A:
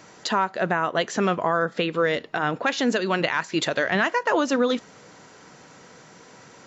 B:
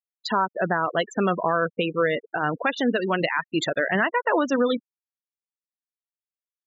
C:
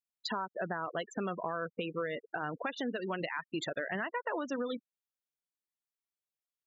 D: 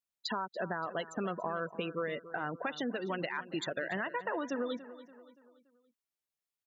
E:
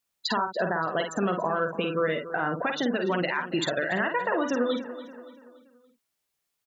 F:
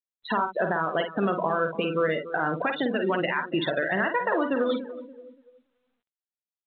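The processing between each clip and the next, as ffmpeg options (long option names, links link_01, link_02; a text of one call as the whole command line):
ffmpeg -i in.wav -af "afftfilt=real='re*gte(hypot(re,im),0.0794)':imag='im*gte(hypot(re,im),0.0794)':win_size=1024:overlap=0.75" out.wav
ffmpeg -i in.wav -af "acompressor=threshold=-33dB:ratio=3,volume=-3dB" out.wav
ffmpeg -i in.wav -filter_complex "[0:a]asplit=2[link_01][link_02];[link_02]adelay=286,lowpass=frequency=4500:poles=1,volume=-15dB,asplit=2[link_03][link_04];[link_04]adelay=286,lowpass=frequency=4500:poles=1,volume=0.46,asplit=2[link_05][link_06];[link_06]adelay=286,lowpass=frequency=4500:poles=1,volume=0.46,asplit=2[link_07][link_08];[link_08]adelay=286,lowpass=frequency=4500:poles=1,volume=0.46[link_09];[link_01][link_03][link_05][link_07][link_09]amix=inputs=5:normalize=0" out.wav
ffmpeg -i in.wav -filter_complex "[0:a]asplit=2[link_01][link_02];[link_02]alimiter=level_in=6.5dB:limit=-24dB:level=0:latency=1:release=257,volume=-6.5dB,volume=1dB[link_03];[link_01][link_03]amix=inputs=2:normalize=0,asplit=2[link_04][link_05];[link_05]adelay=50,volume=-6dB[link_06];[link_04][link_06]amix=inputs=2:normalize=0,volume=4dB" out.wav
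ffmpeg -i in.wav -af "bandreject=frequency=60:width_type=h:width=6,bandreject=frequency=120:width_type=h:width=6,bandreject=frequency=180:width_type=h:width=6,bandreject=frequency=240:width_type=h:width=6,afftdn=noise_reduction=22:noise_floor=-36,volume=1.5dB" -ar 8000 -c:a pcm_mulaw out.wav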